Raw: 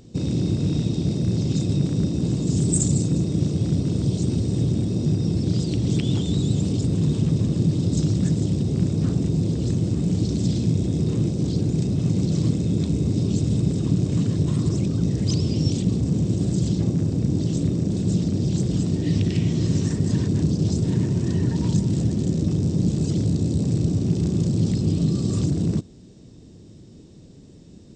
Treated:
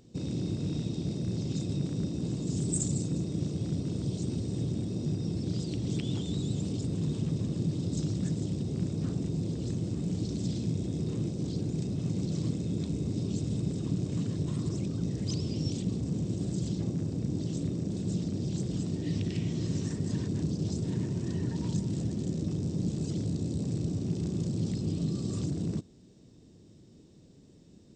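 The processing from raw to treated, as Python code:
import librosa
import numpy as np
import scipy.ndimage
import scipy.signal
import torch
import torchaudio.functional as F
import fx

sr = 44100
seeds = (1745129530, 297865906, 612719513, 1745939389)

y = fx.low_shelf(x, sr, hz=110.0, db=-5.0)
y = y * 10.0 ** (-8.5 / 20.0)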